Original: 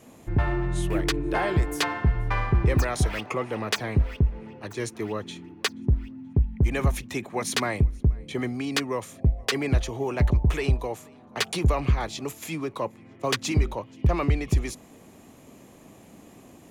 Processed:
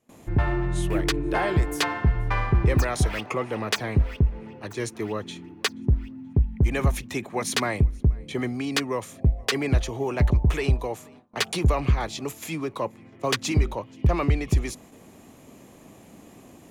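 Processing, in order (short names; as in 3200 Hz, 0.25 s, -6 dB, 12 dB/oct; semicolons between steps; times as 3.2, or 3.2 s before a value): gate with hold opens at -41 dBFS; gain +1 dB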